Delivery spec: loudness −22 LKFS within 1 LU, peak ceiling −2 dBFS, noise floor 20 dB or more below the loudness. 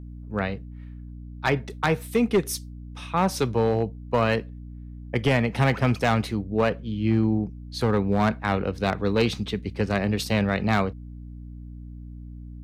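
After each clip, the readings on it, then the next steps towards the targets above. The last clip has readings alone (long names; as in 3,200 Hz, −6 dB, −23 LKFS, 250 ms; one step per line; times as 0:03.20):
share of clipped samples 1.0%; peaks flattened at −14.0 dBFS; mains hum 60 Hz; hum harmonics up to 300 Hz; level of the hum −38 dBFS; integrated loudness −25.0 LKFS; sample peak −14.0 dBFS; target loudness −22.0 LKFS
→ clipped peaks rebuilt −14 dBFS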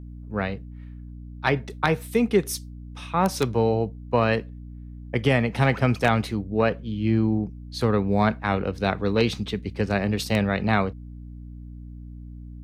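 share of clipped samples 0.0%; mains hum 60 Hz; hum harmonics up to 300 Hz; level of the hum −37 dBFS
→ mains-hum notches 60/120/180/240/300 Hz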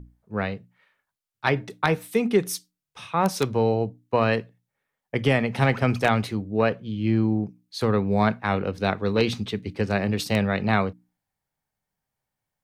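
mains hum none found; integrated loudness −24.5 LKFS; sample peak −5.0 dBFS; target loudness −22.0 LKFS
→ level +2.5 dB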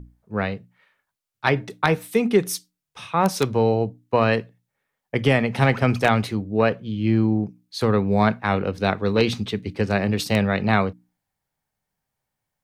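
integrated loudness −22.0 LKFS; sample peak −2.5 dBFS; background noise floor −82 dBFS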